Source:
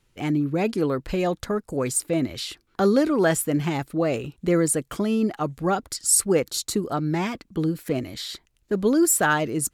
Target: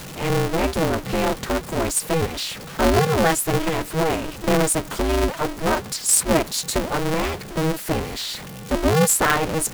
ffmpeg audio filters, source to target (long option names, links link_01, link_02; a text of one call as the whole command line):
ffmpeg -i in.wav -af "aeval=exprs='val(0)+0.5*0.0282*sgn(val(0))':channel_layout=same,aeval=exprs='val(0)*sgn(sin(2*PI*160*n/s))':channel_layout=same,volume=1dB" out.wav